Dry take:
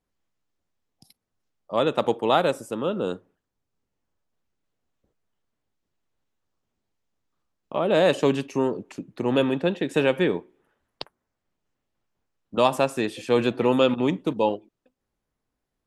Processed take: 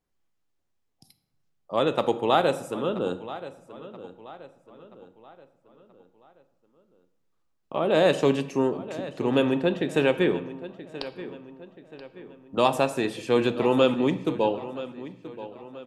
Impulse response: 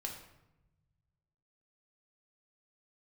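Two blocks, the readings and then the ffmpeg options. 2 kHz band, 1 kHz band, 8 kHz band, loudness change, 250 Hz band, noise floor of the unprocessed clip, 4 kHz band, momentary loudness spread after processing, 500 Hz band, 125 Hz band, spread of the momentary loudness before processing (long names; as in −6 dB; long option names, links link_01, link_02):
−0.5 dB, −0.5 dB, −1.0 dB, −1.5 dB, −0.5 dB, −82 dBFS, −1.0 dB, 21 LU, −0.5 dB, −0.5 dB, 13 LU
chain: -filter_complex "[0:a]asplit=2[link_01][link_02];[link_02]adelay=979,lowpass=frequency=4600:poles=1,volume=-15dB,asplit=2[link_03][link_04];[link_04]adelay=979,lowpass=frequency=4600:poles=1,volume=0.45,asplit=2[link_05][link_06];[link_06]adelay=979,lowpass=frequency=4600:poles=1,volume=0.45,asplit=2[link_07][link_08];[link_08]adelay=979,lowpass=frequency=4600:poles=1,volume=0.45[link_09];[link_01][link_03][link_05][link_07][link_09]amix=inputs=5:normalize=0,asplit=2[link_10][link_11];[1:a]atrim=start_sample=2205[link_12];[link_11][link_12]afir=irnorm=-1:irlink=0,volume=-4.5dB[link_13];[link_10][link_13]amix=inputs=2:normalize=0,volume=-4dB"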